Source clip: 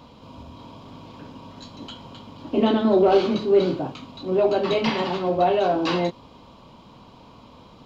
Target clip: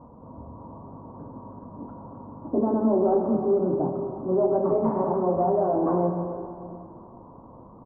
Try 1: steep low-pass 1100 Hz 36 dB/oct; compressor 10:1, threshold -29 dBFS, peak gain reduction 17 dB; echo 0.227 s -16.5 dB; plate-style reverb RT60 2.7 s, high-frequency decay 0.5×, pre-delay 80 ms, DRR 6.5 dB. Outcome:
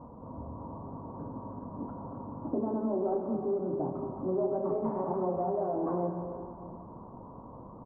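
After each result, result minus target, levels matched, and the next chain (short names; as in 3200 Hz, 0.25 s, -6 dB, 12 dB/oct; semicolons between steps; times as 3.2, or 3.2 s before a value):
echo 0.102 s late; compressor: peak gain reduction +9 dB
steep low-pass 1100 Hz 36 dB/oct; compressor 10:1, threshold -29 dBFS, peak gain reduction 17 dB; echo 0.125 s -16.5 dB; plate-style reverb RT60 2.7 s, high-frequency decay 0.5×, pre-delay 80 ms, DRR 6.5 dB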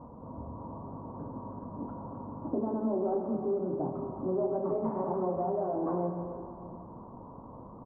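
compressor: peak gain reduction +9 dB
steep low-pass 1100 Hz 36 dB/oct; compressor 10:1, threshold -19 dBFS, peak gain reduction 8 dB; echo 0.125 s -16.5 dB; plate-style reverb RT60 2.7 s, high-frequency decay 0.5×, pre-delay 80 ms, DRR 6.5 dB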